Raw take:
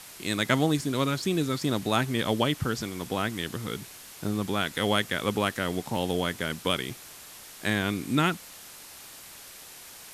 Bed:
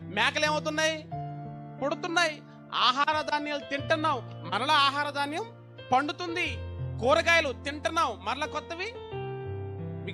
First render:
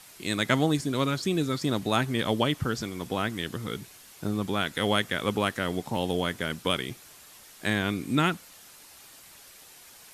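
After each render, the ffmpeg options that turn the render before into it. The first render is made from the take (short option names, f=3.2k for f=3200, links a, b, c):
-af "afftdn=nr=6:nf=-47"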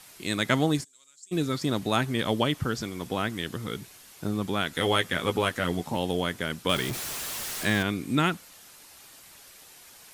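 -filter_complex "[0:a]asplit=3[a][b][c];[a]afade=t=out:st=0.83:d=0.02[d];[b]bandpass=f=7.5k:t=q:w=11,afade=t=in:st=0.83:d=0.02,afade=t=out:st=1.31:d=0.02[e];[c]afade=t=in:st=1.31:d=0.02[f];[d][e][f]amix=inputs=3:normalize=0,asettb=1/sr,asplit=3[g][h][i];[g]atrim=end=4.714[j];[h]atrim=start=4.71:end=5.95,asetpts=PTS-STARTPTS,afade=t=in:d=0.004:c=qsin,afade=t=out:st=1.236:d=0.004:c=qsin,asplit=2[k][l];[l]adelay=12,volume=-5dB[m];[k][m]amix=inputs=2:normalize=0,atrim=end_sample=54684[n];[i]atrim=start=5.946[o];[j][n]acrossfade=d=0.004:c1=hsin:c2=qsin[p];[p][o]acrossfade=d=0.004:c1=qsin:c2=hsin,asettb=1/sr,asplit=3[q][r][s];[q]atrim=end=6.694[t];[r]atrim=start=6.69:end=7.83,asetpts=PTS-STARTPTS,afade=t=in:d=0.004:c=qsin,afade=t=out:st=1.136:d=0.004:c=qsin,aeval=exprs='val(0)+0.5*0.0335*sgn(val(0))':c=same[u];[s]atrim=start=7.826[v];[t][u]acrossfade=d=0.004:c1=hsin:c2=qsin[w];[w][v]acrossfade=d=0.004:c1=qsin:c2=hsin"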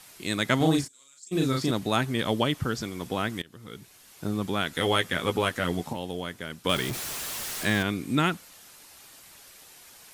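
-filter_complex "[0:a]asettb=1/sr,asplit=3[a][b][c];[a]atrim=end=0.574[d];[b]atrim=start=0.57:end=1.71,asetpts=PTS-STARTPTS,afade=t=in:d=0.004:c=qsin,afade=t=out:st=1.136:d=0.004:c=qsin,asplit=2[e][f];[f]adelay=37,volume=-2dB[g];[e][g]amix=inputs=2:normalize=0,atrim=end_sample=50274[h];[c]atrim=start=1.706[i];[d][h]acrossfade=d=0.004:c1=hsin:c2=qsin[j];[j][i]acrossfade=d=0.004:c1=qsin:c2=hsin,asplit=4[k][l][m][n];[k]atrim=end=3.42,asetpts=PTS-STARTPTS,afade=t=out:st=3.416:d=0.004:c=hsin:silence=0.0749894[o];[l]atrim=start=3.42:end=5.932,asetpts=PTS-STARTPTS,afade=t=in:d=0.89:silence=0.0749894[p];[m]atrim=start=5.928:end=6.642,asetpts=PTS-STARTPTS,volume=-6dB[q];[n]atrim=start=6.638[r];[o][p]concat=n=2:v=0:a=1[s];[s][q]acrossfade=d=0.004:c1=hsin:c2=hsin[t];[t][r]acrossfade=d=0.004:c1=hsin:c2=hsin"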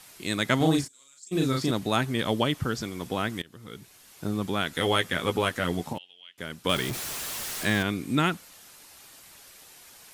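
-filter_complex "[0:a]asettb=1/sr,asplit=3[a][b][c];[a]atrim=end=5.984[d];[b]atrim=start=5.98:end=6.38,asetpts=PTS-STARTPTS,afade=t=in:d=0.004:c=qsin,afade=t=out:st=0.396:d=0.004:c=qsin,bandpass=f=2.9k:t=q:w=8.2[e];[c]atrim=start=6.376[f];[d][e]acrossfade=d=0.004:c1=hsin:c2=qsin[g];[g][f]acrossfade=d=0.004:c1=qsin:c2=hsin"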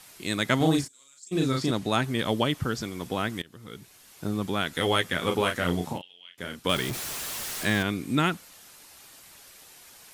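-filter_complex "[0:a]asettb=1/sr,asplit=3[a][b][c];[a]atrim=end=1.314[d];[b]atrim=start=1.31:end=2.04,asetpts=PTS-STARTPTS,afade=t=in:d=0.004:c=qsin,afade=t=out:st=0.726:d=0.004:c=qsin,lowpass=11k[e];[c]atrim=start=2.036[f];[d][e]acrossfade=d=0.004:c1=hsin:c2=qsin[g];[g][f]acrossfade=d=0.004:c1=qsin:c2=hsin,asettb=1/sr,asplit=3[h][i][j];[h]atrim=end=5.194[k];[i]atrim=start=5.19:end=6.6,asetpts=PTS-STARTPTS,afade=t=in:d=0.004:c=qsin,afade=t=out:st=1.406:d=0.004:c=qsin,asplit=2[l][m];[m]adelay=34,volume=-6dB[n];[l][n]amix=inputs=2:normalize=0,atrim=end_sample=62181[o];[j]atrim=start=6.596[p];[k][o]acrossfade=d=0.004:c1=hsin:c2=qsin[q];[q][p]acrossfade=d=0.004:c1=qsin:c2=hsin"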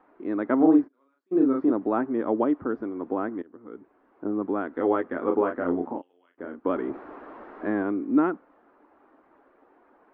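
-af "lowpass=f=1.3k:w=0.5412,lowpass=f=1.3k:w=1.3066,lowshelf=f=200:t=q:w=3:g=-12.5"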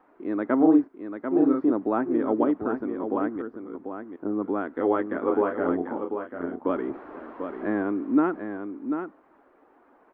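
-af "aecho=1:1:742:0.422"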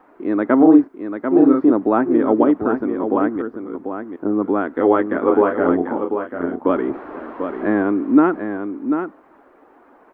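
-af "volume=8.5dB,alimiter=limit=-2dB:level=0:latency=1"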